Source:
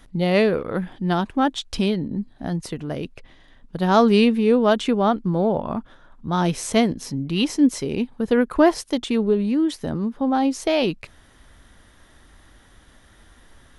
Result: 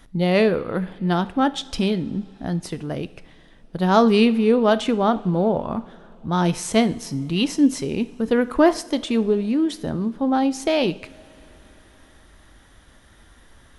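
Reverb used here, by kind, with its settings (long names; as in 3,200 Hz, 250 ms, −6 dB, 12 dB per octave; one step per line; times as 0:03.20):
coupled-rooms reverb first 0.58 s, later 4.5 s, from −18 dB, DRR 13 dB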